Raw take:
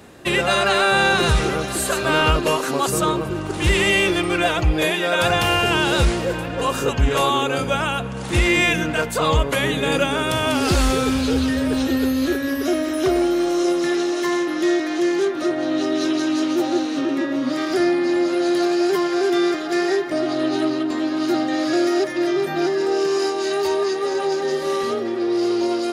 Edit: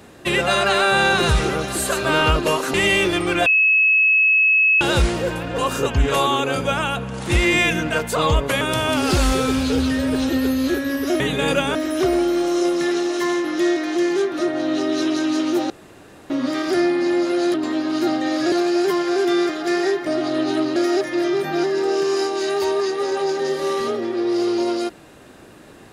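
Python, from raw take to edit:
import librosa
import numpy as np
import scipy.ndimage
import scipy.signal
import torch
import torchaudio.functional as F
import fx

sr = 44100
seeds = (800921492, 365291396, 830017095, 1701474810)

y = fx.edit(x, sr, fx.cut(start_s=2.74, length_s=1.03),
    fx.bleep(start_s=4.49, length_s=1.35, hz=2580.0, db=-12.0),
    fx.move(start_s=9.64, length_s=0.55, to_s=12.78),
    fx.room_tone_fill(start_s=16.73, length_s=0.6),
    fx.move(start_s=20.81, length_s=0.98, to_s=18.57), tone=tone)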